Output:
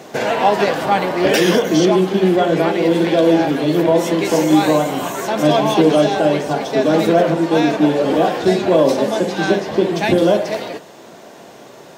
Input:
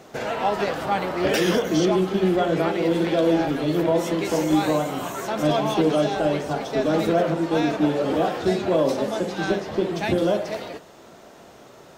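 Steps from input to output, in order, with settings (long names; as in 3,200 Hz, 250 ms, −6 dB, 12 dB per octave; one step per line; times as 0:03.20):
high-pass filter 130 Hz 12 dB per octave
notch filter 1,300 Hz, Q 10
in parallel at −2 dB: speech leveller 2 s
on the sum: level +2 dB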